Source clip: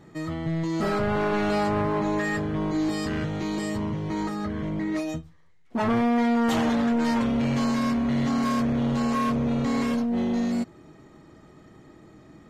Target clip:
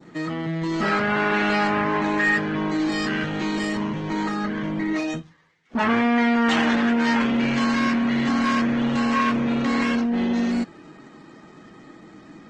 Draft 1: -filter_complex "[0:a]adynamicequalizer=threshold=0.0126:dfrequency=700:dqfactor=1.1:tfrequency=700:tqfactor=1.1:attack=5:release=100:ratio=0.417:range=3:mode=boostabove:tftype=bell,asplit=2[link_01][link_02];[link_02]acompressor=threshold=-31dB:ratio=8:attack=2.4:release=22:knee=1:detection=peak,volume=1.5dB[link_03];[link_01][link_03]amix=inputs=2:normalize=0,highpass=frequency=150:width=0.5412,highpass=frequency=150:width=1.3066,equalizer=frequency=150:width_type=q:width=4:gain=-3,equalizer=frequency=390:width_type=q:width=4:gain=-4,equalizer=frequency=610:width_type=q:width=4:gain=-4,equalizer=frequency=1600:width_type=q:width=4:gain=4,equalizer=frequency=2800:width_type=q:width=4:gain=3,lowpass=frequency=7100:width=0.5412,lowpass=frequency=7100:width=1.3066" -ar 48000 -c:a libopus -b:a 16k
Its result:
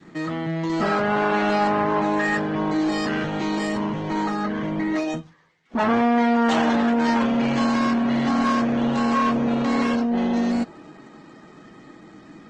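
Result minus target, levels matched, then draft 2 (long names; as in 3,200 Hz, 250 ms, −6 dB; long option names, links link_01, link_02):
2,000 Hz band −4.0 dB
-filter_complex "[0:a]adynamicequalizer=threshold=0.0126:dfrequency=2100:dqfactor=1.1:tfrequency=2100:tqfactor=1.1:attack=5:release=100:ratio=0.417:range=3:mode=boostabove:tftype=bell,asplit=2[link_01][link_02];[link_02]acompressor=threshold=-31dB:ratio=8:attack=2.4:release=22:knee=1:detection=peak,volume=1.5dB[link_03];[link_01][link_03]amix=inputs=2:normalize=0,highpass=frequency=150:width=0.5412,highpass=frequency=150:width=1.3066,equalizer=frequency=150:width_type=q:width=4:gain=-3,equalizer=frequency=390:width_type=q:width=4:gain=-4,equalizer=frequency=610:width_type=q:width=4:gain=-4,equalizer=frequency=1600:width_type=q:width=4:gain=4,equalizer=frequency=2800:width_type=q:width=4:gain=3,lowpass=frequency=7100:width=0.5412,lowpass=frequency=7100:width=1.3066" -ar 48000 -c:a libopus -b:a 16k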